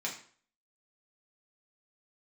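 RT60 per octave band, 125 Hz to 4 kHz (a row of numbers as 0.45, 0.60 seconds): 0.45, 0.45, 0.50, 0.50, 0.45, 0.40 seconds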